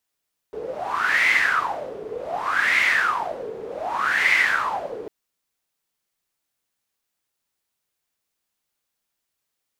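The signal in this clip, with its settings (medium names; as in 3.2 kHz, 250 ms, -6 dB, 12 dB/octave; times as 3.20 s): wind-like swept noise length 4.55 s, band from 430 Hz, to 2.1 kHz, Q 9.8, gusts 3, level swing 15 dB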